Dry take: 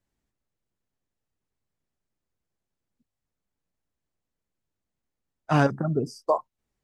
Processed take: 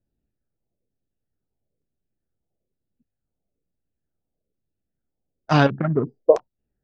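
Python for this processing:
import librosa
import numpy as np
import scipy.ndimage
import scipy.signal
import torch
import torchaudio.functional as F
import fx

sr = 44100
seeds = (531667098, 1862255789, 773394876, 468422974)

y = fx.wiener(x, sr, points=41)
y = fx.filter_lfo_lowpass(y, sr, shape='saw_down', hz=1.1, low_hz=410.0, high_hz=6100.0, q=3.5)
y = y * librosa.db_to_amplitude(4.0)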